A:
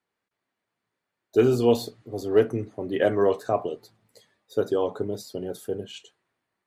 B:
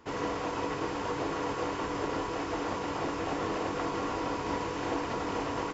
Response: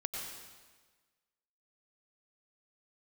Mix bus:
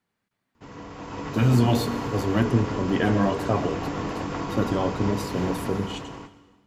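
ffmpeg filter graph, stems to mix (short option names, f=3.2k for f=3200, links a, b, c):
-filter_complex "[0:a]volume=1dB,asplit=2[a][b];[b]volume=-11.5dB[c];[1:a]dynaudnorm=f=110:g=11:m=11dB,adelay=550,volume=-12dB,asplit=2[d][e];[e]volume=-9.5dB[f];[2:a]atrim=start_sample=2205[g];[c][f]amix=inputs=2:normalize=0[h];[h][g]afir=irnorm=-1:irlink=0[i];[a][d][i]amix=inputs=3:normalize=0,afftfilt=real='re*lt(hypot(re,im),0.794)':imag='im*lt(hypot(re,im),0.794)':win_size=1024:overlap=0.75,lowshelf=f=280:t=q:w=1.5:g=6.5"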